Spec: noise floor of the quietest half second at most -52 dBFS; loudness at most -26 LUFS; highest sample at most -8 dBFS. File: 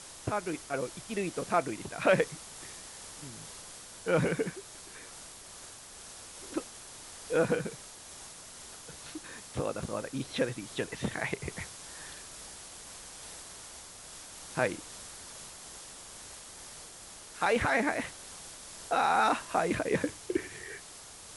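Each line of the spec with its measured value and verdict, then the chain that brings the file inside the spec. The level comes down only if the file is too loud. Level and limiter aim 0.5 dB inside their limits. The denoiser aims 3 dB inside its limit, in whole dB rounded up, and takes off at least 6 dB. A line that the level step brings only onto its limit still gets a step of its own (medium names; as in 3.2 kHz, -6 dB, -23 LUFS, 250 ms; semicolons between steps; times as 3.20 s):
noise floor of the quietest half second -49 dBFS: fail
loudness -34.0 LUFS: pass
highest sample -12.0 dBFS: pass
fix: noise reduction 6 dB, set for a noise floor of -49 dBFS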